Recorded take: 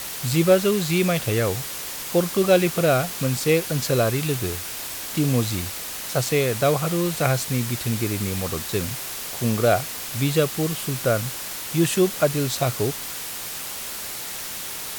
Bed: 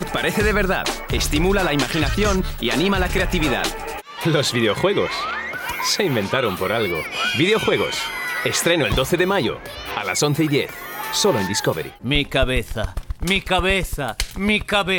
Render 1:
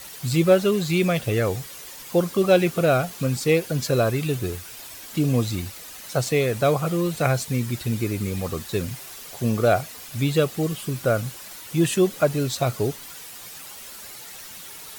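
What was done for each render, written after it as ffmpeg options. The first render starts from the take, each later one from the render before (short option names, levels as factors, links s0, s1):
-af "afftdn=nr=10:nf=-33"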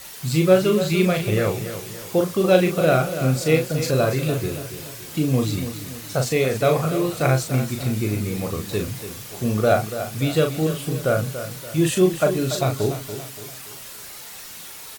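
-filter_complex "[0:a]asplit=2[s0][s1];[s1]adelay=38,volume=0.562[s2];[s0][s2]amix=inputs=2:normalize=0,aecho=1:1:286|572|858|1144:0.282|0.121|0.0521|0.0224"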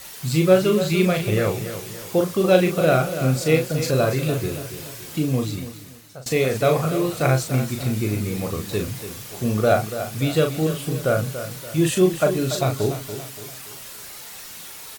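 -filter_complex "[0:a]asplit=2[s0][s1];[s0]atrim=end=6.26,asetpts=PTS-STARTPTS,afade=t=out:st=5.08:d=1.18:silence=0.0841395[s2];[s1]atrim=start=6.26,asetpts=PTS-STARTPTS,afade=t=in:d=0.004:c=hsin:silence=0.0841395[s3];[s2][s3]concat=n=2:v=0:a=1"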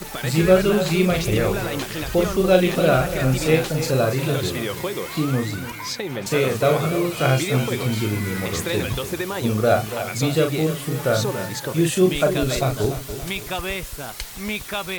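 -filter_complex "[1:a]volume=0.355[s0];[0:a][s0]amix=inputs=2:normalize=0"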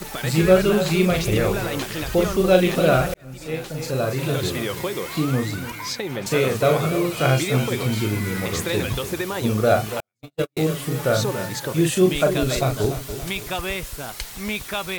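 -filter_complex "[0:a]asettb=1/sr,asplit=3[s0][s1][s2];[s0]atrim=end=10.004[s3];[s1]atrim=start=10:end=10.57,asetpts=PTS-STARTPTS,afade=t=in:d=0.004:c=qsin,afade=t=out:st=0.566:d=0.004:c=qsin,agate=range=0.00141:threshold=0.158:ratio=16:release=100:detection=peak[s4];[s2]atrim=start=10.566[s5];[s3][s4]acrossfade=d=0.004:c1=hsin:c2=qsin[s6];[s6][s5]acrossfade=d=0.004:c1=qsin:c2=hsin,asplit=2[s7][s8];[s7]atrim=end=3.14,asetpts=PTS-STARTPTS,afade=t=out:st=3.136:d=0.004:c=hsin[s9];[s8]atrim=start=3.14,asetpts=PTS-STARTPTS,afade=t=in:d=1.34[s10];[s9][s10]concat=n=2:v=0:a=1"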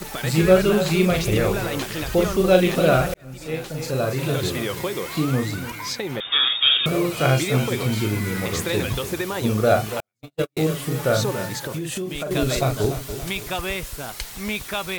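-filter_complex "[0:a]asettb=1/sr,asplit=3[s0][s1][s2];[s0]atrim=end=6.204[s3];[s1]atrim=start=6.2:end=6.86,asetpts=PTS-STARTPTS,afade=t=in:d=0.004:c=qsin,afade=t=out:st=0.656:d=0.004:c=qsin,lowpass=f=3200:t=q:w=0.5098,lowpass=f=3200:t=q:w=0.6013,lowpass=f=3200:t=q:w=0.9,lowpass=f=3200:t=q:w=2.563,afreqshift=-3800[s4];[s2]atrim=start=6.856[s5];[s3][s4]acrossfade=d=0.004:c1=hsin:c2=qsin[s6];[s6][s5]acrossfade=d=0.004:c1=qsin:c2=hsin,asettb=1/sr,asplit=3[s7][s8][s9];[s7]atrim=end=8.164[s10];[s8]atrim=start=8.16:end=9.18,asetpts=PTS-STARTPTS,afade=t=in:d=0.004:c=qsin,afade=t=out:st=1.016:d=0.004:c=qsin,acrusher=bits=6:mix=0:aa=0.5[s11];[s9]atrim=start=9.176[s12];[s10][s11]acrossfade=d=0.004:c1=hsin:c2=qsin[s13];[s13][s12]acrossfade=d=0.004:c1=qsin:c2=hsin,asettb=1/sr,asplit=3[s14][s15][s16];[s14]atrim=end=11.564[s17];[s15]atrim=start=11.56:end=12.31,asetpts=PTS-STARTPTS,afade=t=in:d=0.004:c=qsin,afade=t=out:st=0.746:d=0.004:c=qsin,acompressor=threshold=0.0631:ratio=16:attack=3.2:release=140:knee=1:detection=peak[s18];[s16]atrim=start=12.306[s19];[s17][s18]acrossfade=d=0.004:c1=hsin:c2=qsin[s20];[s20][s19]acrossfade=d=0.004:c1=qsin:c2=hsin"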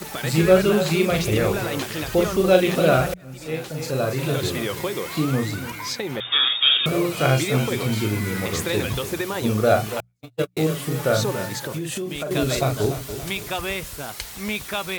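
-af "highpass=52,bandreject=f=60:t=h:w=6,bandreject=f=120:t=h:w=6,bandreject=f=180:t=h:w=6"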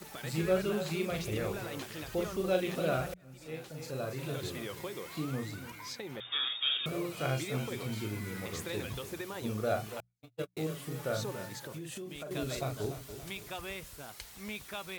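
-af "volume=0.2"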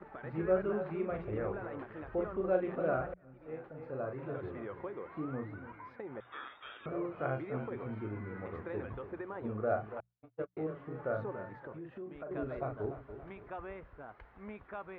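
-af "lowpass=f=1600:w=0.5412,lowpass=f=1600:w=1.3066,equalizer=f=150:w=1.4:g=-7"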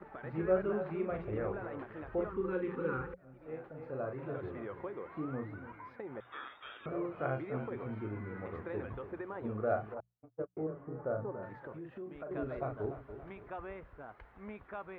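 -filter_complex "[0:a]asettb=1/sr,asplit=3[s0][s1][s2];[s0]atrim=end=2.294[s3];[s1]atrim=start=2.29:end=3.18,asetpts=PTS-STARTPTS,afade=t=in:d=0.004:c=qsin,afade=t=out:st=0.886:d=0.004:c=qsin,asuperstop=centerf=650:order=12:qfactor=2.4[s4];[s2]atrim=start=3.176[s5];[s3][s4]acrossfade=d=0.004:c1=hsin:c2=qsin[s6];[s6][s5]acrossfade=d=0.004:c1=qsin:c2=hsin,asettb=1/sr,asplit=3[s7][s8][s9];[s7]atrim=end=9.944[s10];[s8]atrim=start=9.94:end=11.43,asetpts=PTS-STARTPTS,afade=t=in:d=0.004:c=qsin,afade=t=out:st=1.486:d=0.004:c=qsin,lowpass=1100[s11];[s9]atrim=start=11.426[s12];[s10][s11]acrossfade=d=0.004:c1=hsin:c2=qsin[s13];[s13][s12]acrossfade=d=0.004:c1=qsin:c2=hsin"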